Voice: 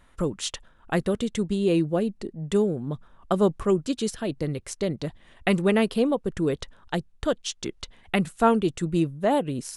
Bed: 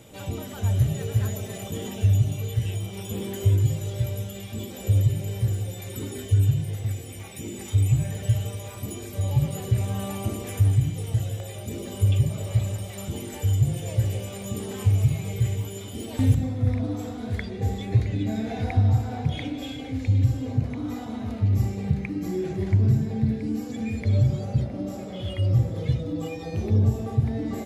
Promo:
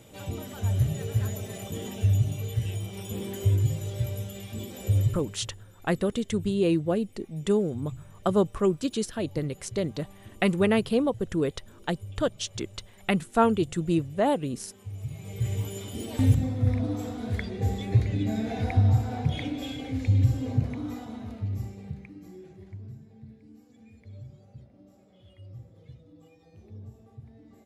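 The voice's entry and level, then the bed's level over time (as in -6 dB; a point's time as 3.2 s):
4.95 s, -1.5 dB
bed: 5.05 s -3 dB
5.49 s -20.5 dB
14.83 s -20.5 dB
15.59 s -1 dB
20.61 s -1 dB
22.99 s -24 dB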